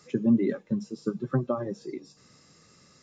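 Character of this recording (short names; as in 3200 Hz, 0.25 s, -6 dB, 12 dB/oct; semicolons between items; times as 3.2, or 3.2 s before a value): noise floor -59 dBFS; spectral tilt -8.0 dB/oct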